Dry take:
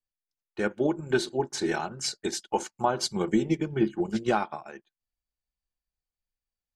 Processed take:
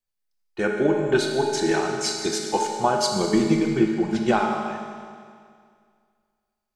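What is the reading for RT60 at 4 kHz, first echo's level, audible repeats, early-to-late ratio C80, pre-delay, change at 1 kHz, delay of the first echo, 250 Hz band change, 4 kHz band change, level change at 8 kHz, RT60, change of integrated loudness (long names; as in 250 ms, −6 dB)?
2.1 s, no echo audible, no echo audible, 3.5 dB, 20 ms, +6.0 dB, no echo audible, +6.0 dB, +6.0 dB, +5.5 dB, 2.1 s, +6.0 dB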